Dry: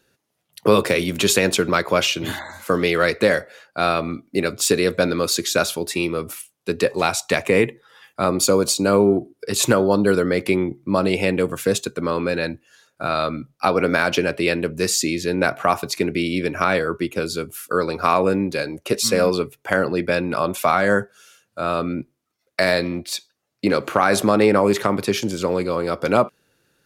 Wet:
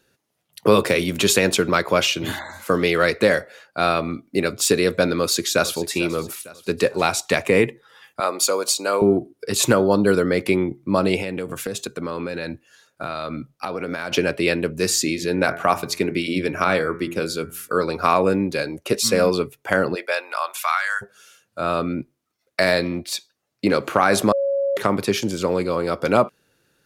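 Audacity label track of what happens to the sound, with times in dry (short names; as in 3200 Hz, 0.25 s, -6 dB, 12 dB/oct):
5.180000	5.900000	echo throw 0.45 s, feedback 45%, level -15.5 dB
8.200000	9.020000	HPF 580 Hz
11.200000	14.120000	compressor, threshold -23 dBFS
14.780000	17.840000	de-hum 85.26 Hz, notches 28
19.940000	21.010000	HPF 480 Hz -> 1400 Hz 24 dB/oct
24.320000	24.770000	bleep 555 Hz -18 dBFS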